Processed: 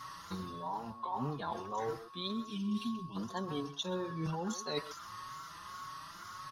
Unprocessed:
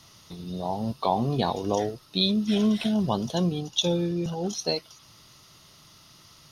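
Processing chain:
mains-hum notches 50/100/150 Hz
tape wow and flutter 110 cents
flat-topped bell 1,300 Hz +14 dB 1.2 octaves
reversed playback
downward compressor 16 to 1, threshold −33 dBFS, peak gain reduction 21 dB
reversed playback
gain on a spectral selection 0:02.46–0:03.16, 430–2,300 Hz −20 dB
steady tone 1,100 Hz −48 dBFS
far-end echo of a speakerphone 130 ms, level −12 dB
barber-pole flanger 4.9 ms +1.7 Hz
level +1.5 dB

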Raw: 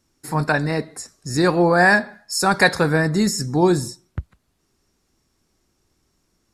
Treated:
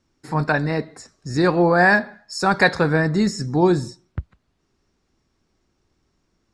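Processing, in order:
high-frequency loss of the air 98 metres

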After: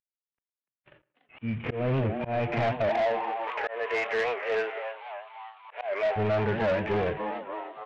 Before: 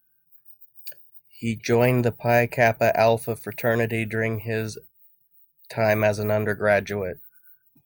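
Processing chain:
variable-slope delta modulation 16 kbit/s
downward compressor 6 to 1, threshold −28 dBFS, peak gain reduction 11.5 dB
harmonic and percussive parts rebalanced percussive −18 dB
0:02.89–0:06.16: Butterworth high-pass 420 Hz 36 dB per octave
echo with shifted repeats 292 ms, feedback 63%, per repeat +110 Hz, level −12 dB
dynamic equaliser 2,000 Hz, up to +6 dB, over −57 dBFS, Q 1.5
tape delay 114 ms, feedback 57%, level −21 dB, low-pass 2,000 Hz
volume swells 242 ms
soft clipping −33 dBFS, distortion −10 dB
automatic gain control gain up to 11.5 dB
wow of a warped record 78 rpm, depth 160 cents

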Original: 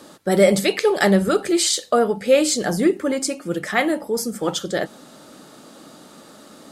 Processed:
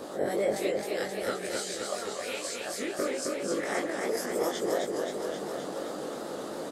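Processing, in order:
peak hold with a rise ahead of every peak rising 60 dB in 0.34 s
0:00.70–0:02.99: guitar amp tone stack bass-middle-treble 5-5-5
harmonic and percussive parts rebalanced harmonic −15 dB
downward compressor 10 to 1, threshold −38 dBFS, peak gain reduction 22 dB
parametric band 520 Hz +11 dB 2.1 octaves
double-tracking delay 20 ms −3 dB
feedback echo with a swinging delay time 262 ms, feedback 72%, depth 107 cents, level −3.5 dB

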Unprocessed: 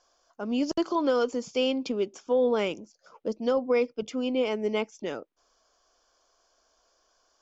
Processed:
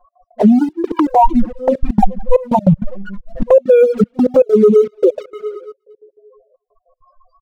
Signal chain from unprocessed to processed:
0:01.10–0:03.54: lower of the sound and its delayed copy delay 1.3 ms
four-comb reverb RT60 2.5 s, combs from 31 ms, DRR 13 dB
spectral peaks only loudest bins 2
high shelf with overshoot 1,700 Hz −6.5 dB, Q 3
leveller curve on the samples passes 1
comb filter 5.5 ms, depth 91%
gate pattern "x.x.xxxxx.." 197 BPM −24 dB
downward compressor 12 to 1, threshold −30 dBFS, peak gain reduction 13.5 dB
dynamic equaliser 270 Hz, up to −5 dB, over −48 dBFS, Q 1.4
flanger swept by the level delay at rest 9.9 ms, full sweep at −32.5 dBFS
boost into a limiter +29.5 dB
level −1 dB

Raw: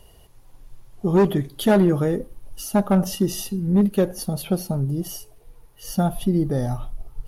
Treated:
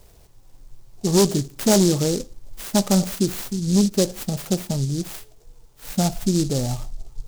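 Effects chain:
short delay modulated by noise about 5,700 Hz, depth 0.14 ms

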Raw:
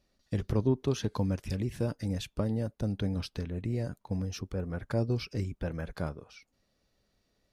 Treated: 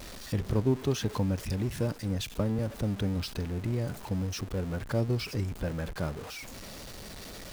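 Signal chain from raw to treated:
converter with a step at zero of −37.5 dBFS
0:01.92–0:02.59: multiband upward and downward expander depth 40%

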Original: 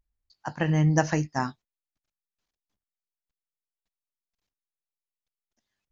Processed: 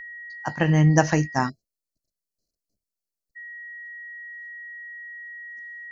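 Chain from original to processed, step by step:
steady tone 1,900 Hz −41 dBFS
time-frequency box erased 0:01.49–0:03.36, 690–4,000 Hz
level +4.5 dB

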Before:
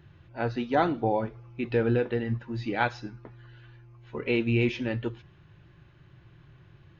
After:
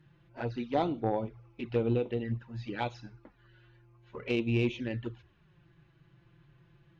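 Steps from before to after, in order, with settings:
flanger swept by the level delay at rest 6.9 ms, full sweep at −24 dBFS
harmonic generator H 3 −18 dB, 5 −36 dB, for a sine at −14 dBFS
level −1 dB

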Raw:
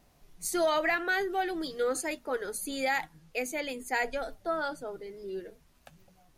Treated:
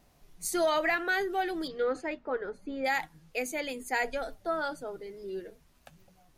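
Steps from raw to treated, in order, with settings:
0:01.67–0:02.84: low-pass filter 3,500 Hz → 1,300 Hz 12 dB per octave

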